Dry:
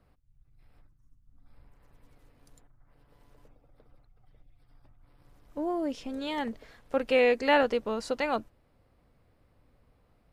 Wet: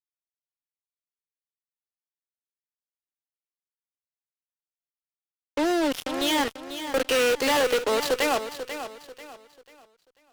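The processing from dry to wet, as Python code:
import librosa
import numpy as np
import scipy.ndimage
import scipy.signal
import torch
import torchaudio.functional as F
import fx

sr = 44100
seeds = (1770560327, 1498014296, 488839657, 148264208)

p1 = fx.tracing_dist(x, sr, depth_ms=0.14)
p2 = scipy.signal.sosfilt(scipy.signal.butter(8, 280.0, 'highpass', fs=sr, output='sos'), p1)
p3 = fx.peak_eq(p2, sr, hz=3200.0, db=9.0, octaves=0.67)
p4 = fx.fuzz(p3, sr, gain_db=41.0, gate_db=-38.0)
p5 = p4 + fx.echo_feedback(p4, sr, ms=491, feedback_pct=33, wet_db=-10.5, dry=0)
y = p5 * librosa.db_to_amplitude(-7.0)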